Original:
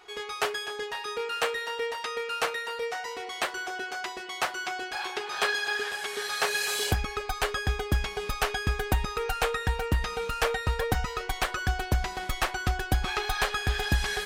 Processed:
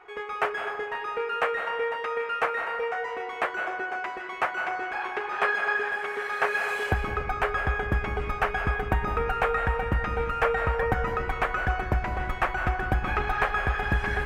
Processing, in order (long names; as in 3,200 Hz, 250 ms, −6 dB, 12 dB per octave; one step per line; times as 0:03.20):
drawn EQ curve 290 Hz 0 dB, 520 Hz +3 dB, 1,300 Hz +4 dB, 2,300 Hz +1 dB, 4,000 Hz −17 dB
on a send: convolution reverb RT60 1.3 s, pre-delay 144 ms, DRR 6 dB